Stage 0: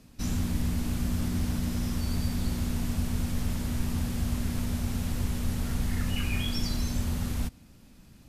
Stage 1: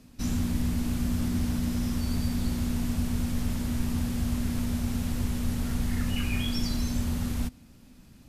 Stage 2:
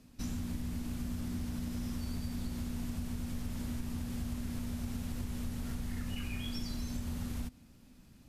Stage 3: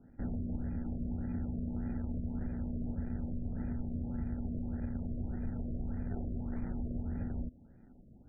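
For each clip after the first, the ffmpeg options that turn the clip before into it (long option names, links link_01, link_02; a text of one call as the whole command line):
ffmpeg -i in.wav -af "equalizer=frequency=250:width=6.9:gain=5.5" out.wav
ffmpeg -i in.wav -af "acompressor=threshold=-28dB:ratio=6,volume=-5.5dB" out.wav
ffmpeg -i in.wav -filter_complex "[0:a]acrossover=split=370[link_01][link_02];[link_02]acrusher=samples=40:mix=1:aa=0.000001[link_03];[link_01][link_03]amix=inputs=2:normalize=0,afftfilt=real='re*lt(b*sr/1024,670*pow(2500/670,0.5+0.5*sin(2*PI*1.7*pts/sr)))':imag='im*lt(b*sr/1024,670*pow(2500/670,0.5+0.5*sin(2*PI*1.7*pts/sr)))':win_size=1024:overlap=0.75,volume=1dB" out.wav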